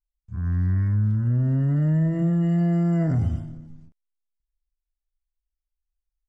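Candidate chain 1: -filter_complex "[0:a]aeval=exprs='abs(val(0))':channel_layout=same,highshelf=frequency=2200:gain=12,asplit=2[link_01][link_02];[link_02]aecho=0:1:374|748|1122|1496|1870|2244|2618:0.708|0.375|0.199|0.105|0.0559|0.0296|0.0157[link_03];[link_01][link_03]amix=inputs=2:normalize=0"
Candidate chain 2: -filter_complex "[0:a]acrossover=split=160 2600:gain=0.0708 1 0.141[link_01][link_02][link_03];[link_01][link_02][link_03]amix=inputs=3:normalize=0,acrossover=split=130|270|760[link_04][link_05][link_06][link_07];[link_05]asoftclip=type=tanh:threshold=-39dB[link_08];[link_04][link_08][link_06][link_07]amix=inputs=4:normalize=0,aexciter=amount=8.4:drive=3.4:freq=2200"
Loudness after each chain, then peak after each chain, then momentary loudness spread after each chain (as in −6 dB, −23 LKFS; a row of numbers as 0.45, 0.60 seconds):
−27.0, −32.0 LKFS; −8.5, −18.5 dBFS; 16, 13 LU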